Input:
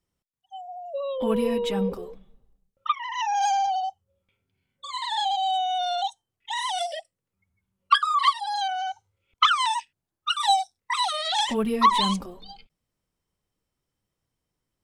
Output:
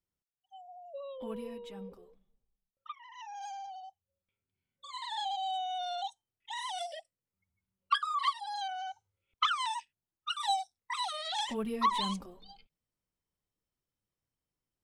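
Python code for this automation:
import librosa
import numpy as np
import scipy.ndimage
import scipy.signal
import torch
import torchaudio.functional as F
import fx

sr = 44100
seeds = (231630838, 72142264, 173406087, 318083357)

y = fx.gain(x, sr, db=fx.line((0.96, -12.0), (1.64, -19.5), (3.81, -19.5), (4.96, -10.0)))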